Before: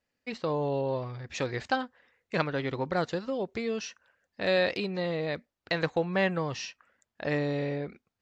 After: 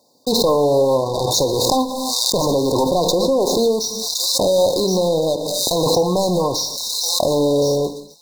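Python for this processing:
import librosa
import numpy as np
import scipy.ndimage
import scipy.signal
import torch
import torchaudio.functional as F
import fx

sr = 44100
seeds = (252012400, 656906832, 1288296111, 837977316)

p1 = scipy.signal.sosfilt(scipy.signal.butter(2, 200.0, 'highpass', fs=sr, output='sos'), x)
p2 = fx.low_shelf(p1, sr, hz=390.0, db=-4.5)
p3 = fx.leveller(p2, sr, passes=5)
p4 = fx.rider(p3, sr, range_db=4, speed_s=2.0)
p5 = fx.leveller(p4, sr, passes=1)
p6 = fx.brickwall_bandstop(p5, sr, low_hz=1100.0, high_hz=3600.0)
p7 = p6 + fx.echo_wet_highpass(p6, sr, ms=1067, feedback_pct=44, hz=4400.0, wet_db=-5.0, dry=0)
p8 = fx.rev_gated(p7, sr, seeds[0], gate_ms=300, shape='falling', drr_db=9.0)
p9 = fx.pre_swell(p8, sr, db_per_s=20.0)
y = p9 * 10.0 ** (-2.0 / 20.0)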